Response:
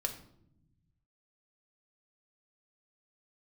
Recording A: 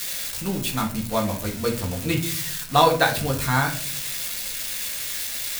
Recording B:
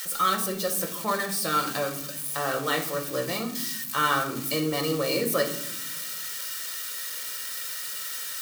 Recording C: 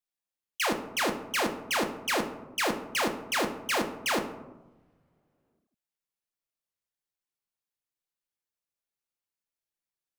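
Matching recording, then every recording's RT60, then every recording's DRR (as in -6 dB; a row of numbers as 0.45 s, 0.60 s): B; 0.50 s, 0.75 s, no single decay rate; 0.0 dB, 3.5 dB, 4.5 dB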